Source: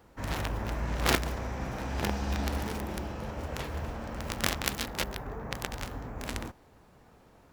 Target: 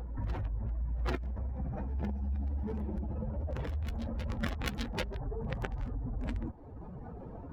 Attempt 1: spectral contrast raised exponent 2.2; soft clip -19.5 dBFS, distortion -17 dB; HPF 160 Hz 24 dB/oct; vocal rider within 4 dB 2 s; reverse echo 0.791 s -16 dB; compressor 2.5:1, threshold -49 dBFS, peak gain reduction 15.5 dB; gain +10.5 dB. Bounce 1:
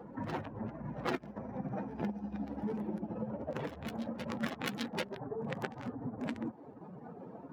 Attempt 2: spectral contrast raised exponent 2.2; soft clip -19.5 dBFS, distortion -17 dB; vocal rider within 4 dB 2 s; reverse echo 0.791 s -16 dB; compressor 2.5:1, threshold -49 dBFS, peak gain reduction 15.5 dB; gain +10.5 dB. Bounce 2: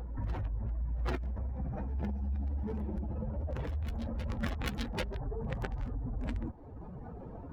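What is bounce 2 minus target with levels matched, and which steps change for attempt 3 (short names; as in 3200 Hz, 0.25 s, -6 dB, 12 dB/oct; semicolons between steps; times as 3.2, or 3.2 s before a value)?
soft clip: distortion +8 dB
change: soft clip -12 dBFS, distortion -24 dB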